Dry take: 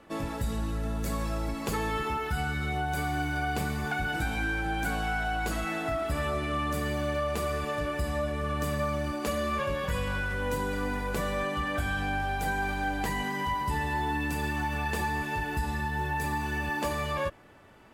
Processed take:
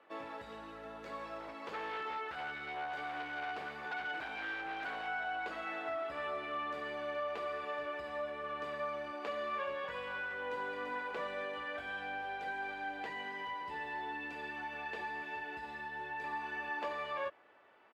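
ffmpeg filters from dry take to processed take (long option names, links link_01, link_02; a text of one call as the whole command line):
ffmpeg -i in.wav -filter_complex "[0:a]asettb=1/sr,asplit=3[link_01][link_02][link_03];[link_01]atrim=end=1.394[link_04];[link_02]atrim=start=1.39:end=5.07,asetpts=PTS-STARTPTS,afade=type=in:duration=0.004:curve=qsin,afade=type=out:start_time=3.676:duration=0.004:curve=qsin,aeval=exprs='0.0501*(abs(mod(val(0)/0.0501+3,4)-2)-1)':channel_layout=same[link_05];[link_03]atrim=start=5.066[link_06];[link_04][link_05]acrossfade=duration=0.004:curve1=hsin:curve2=qsin[link_07];[link_07][link_06]acrossfade=duration=0.004:curve1=qsin:curve2=hsin,asplit=2[link_08][link_09];[link_09]afade=type=in:start_time=10.23:duration=0.01,afade=type=out:start_time=10.77:duration=0.01,aecho=0:1:340|680|1020|1360|1700|2040|2380|2720|3060|3400|3740|4080:0.473151|0.354863|0.266148|0.199611|0.149708|0.112281|0.0842108|0.0631581|0.0473686|0.0355264|0.0266448|0.0199836[link_10];[link_08][link_10]amix=inputs=2:normalize=0,asettb=1/sr,asplit=3[link_11][link_12][link_13];[link_11]atrim=end=11.274[link_14];[link_12]atrim=start=11.27:end=16.24,asetpts=PTS-STARTPTS,afade=type=in:duration=0.004:curve=qsin,afade=type=out:start_time=4.966:duration=0.004:curve=qsin,equalizer=frequency=1100:width=1.7:gain=-6[link_15];[link_13]atrim=start=16.236[link_16];[link_14][link_15]acrossfade=duration=0.004:curve1=hsin:curve2=qsin[link_17];[link_17][link_16]acrossfade=duration=0.004:curve1=qsin:curve2=hsin,acrossover=split=6700[link_18][link_19];[link_19]acompressor=threshold=-52dB:ratio=4:attack=1:release=60[link_20];[link_18][link_20]amix=inputs=2:normalize=0,highpass=frequency=160:poles=1,acrossover=split=360 3800:gain=0.112 1 0.0891[link_21][link_22][link_23];[link_21][link_22][link_23]amix=inputs=3:normalize=0,volume=-6dB" out.wav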